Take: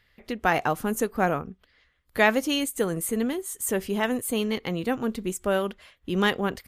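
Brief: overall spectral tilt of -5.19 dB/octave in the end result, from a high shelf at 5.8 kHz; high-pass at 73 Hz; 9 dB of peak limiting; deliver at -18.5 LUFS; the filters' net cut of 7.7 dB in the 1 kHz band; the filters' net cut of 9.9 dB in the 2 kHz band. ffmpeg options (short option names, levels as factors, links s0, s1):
-af "highpass=73,equalizer=f=1000:t=o:g=-9,equalizer=f=2000:t=o:g=-8.5,highshelf=f=5800:g=-7.5,volume=4.47,alimiter=limit=0.422:level=0:latency=1"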